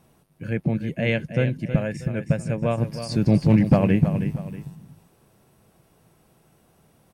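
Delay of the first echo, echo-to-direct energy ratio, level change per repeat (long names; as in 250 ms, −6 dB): 319 ms, −9.5 dB, −9.0 dB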